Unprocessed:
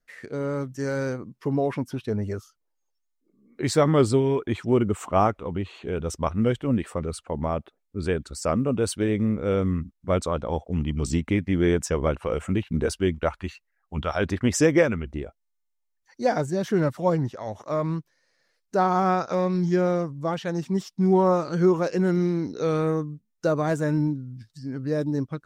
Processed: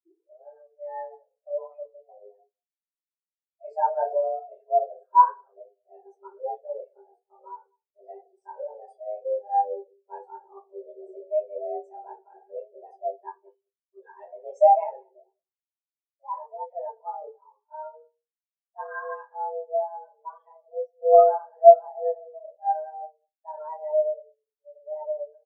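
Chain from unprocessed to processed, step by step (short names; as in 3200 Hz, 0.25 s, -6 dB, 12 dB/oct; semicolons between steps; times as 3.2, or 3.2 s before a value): tape start at the beginning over 0.47 s; in parallel at -1 dB: level quantiser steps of 9 dB; on the sum: frequency shift +310 Hz; echo 0.197 s -15.5 dB; reverb RT60 0.50 s, pre-delay 3 ms, DRR -9 dB; spectral expander 2.5:1; gain -9.5 dB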